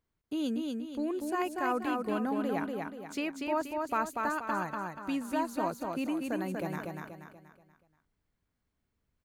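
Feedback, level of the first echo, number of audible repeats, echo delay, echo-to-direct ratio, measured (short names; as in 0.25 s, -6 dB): 42%, -3.5 dB, 5, 0.24 s, -2.5 dB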